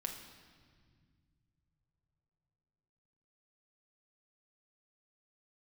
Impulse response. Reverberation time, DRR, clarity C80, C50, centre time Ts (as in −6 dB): 1.9 s, 2.0 dB, 8.0 dB, 6.5 dB, 35 ms